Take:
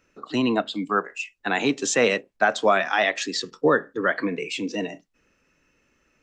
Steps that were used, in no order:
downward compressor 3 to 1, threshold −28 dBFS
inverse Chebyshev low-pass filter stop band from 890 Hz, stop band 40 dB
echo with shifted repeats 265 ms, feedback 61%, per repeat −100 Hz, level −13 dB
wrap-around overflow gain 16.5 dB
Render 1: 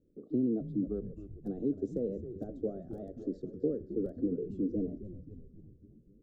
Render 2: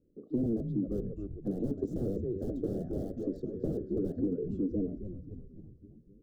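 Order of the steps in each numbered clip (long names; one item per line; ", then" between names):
downward compressor, then echo with shifted repeats, then wrap-around overflow, then inverse Chebyshev low-pass filter
echo with shifted repeats, then wrap-around overflow, then inverse Chebyshev low-pass filter, then downward compressor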